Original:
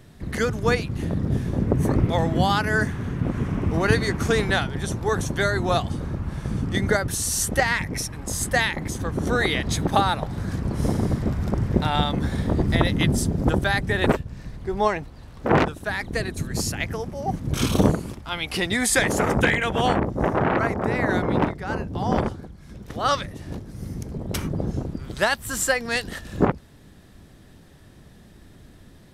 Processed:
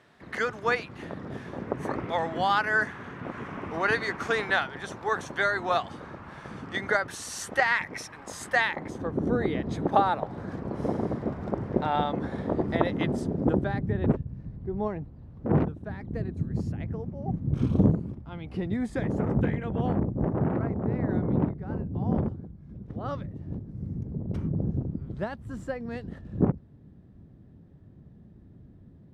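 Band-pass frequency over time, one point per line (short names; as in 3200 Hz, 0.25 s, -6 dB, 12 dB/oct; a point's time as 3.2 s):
band-pass, Q 0.74
8.54 s 1300 Hz
9.39 s 230 Hz
9.99 s 580 Hz
13.16 s 580 Hz
14 s 140 Hz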